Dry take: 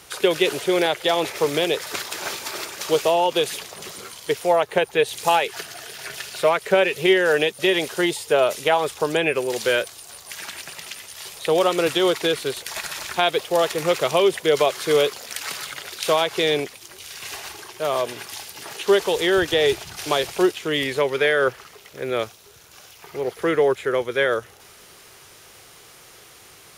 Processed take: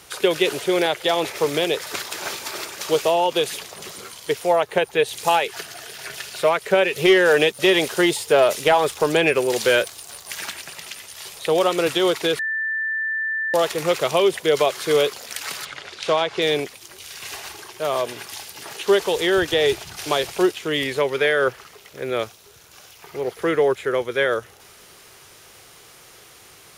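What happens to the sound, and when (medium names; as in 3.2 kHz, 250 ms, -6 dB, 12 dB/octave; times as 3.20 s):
6.95–10.53 s: waveshaping leveller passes 1
12.39–13.54 s: bleep 1.77 kHz -21.5 dBFS
15.65–16.42 s: distance through air 91 m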